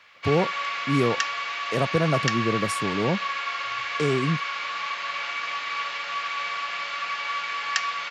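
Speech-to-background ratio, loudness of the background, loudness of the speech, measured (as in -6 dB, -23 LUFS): 1.5 dB, -28.0 LUFS, -26.5 LUFS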